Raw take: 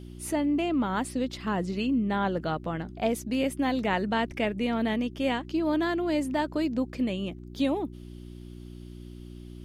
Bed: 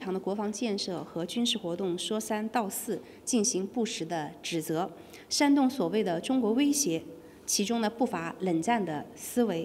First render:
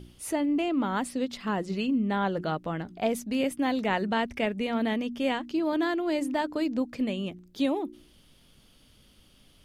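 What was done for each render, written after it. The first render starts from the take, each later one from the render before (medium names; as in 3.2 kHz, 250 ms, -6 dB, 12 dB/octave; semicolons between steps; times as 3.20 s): de-hum 60 Hz, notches 6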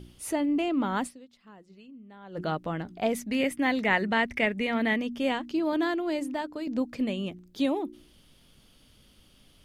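1.06–2.39 s: dip -22 dB, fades 0.43 s exponential; 3.13–5.01 s: peaking EQ 2 kHz +10 dB 0.5 oct; 5.87–6.67 s: fade out, to -7.5 dB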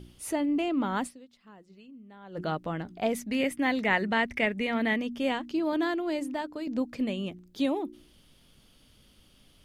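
trim -1 dB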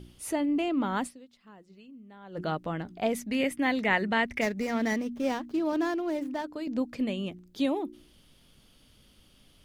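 4.41–6.45 s: median filter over 15 samples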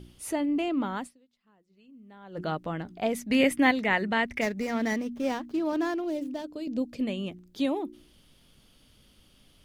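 0.78–2.10 s: dip -12.5 dB, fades 0.40 s; 3.30–3.71 s: gain +5.5 dB; 6.04–7.01 s: high-order bell 1.3 kHz -8.5 dB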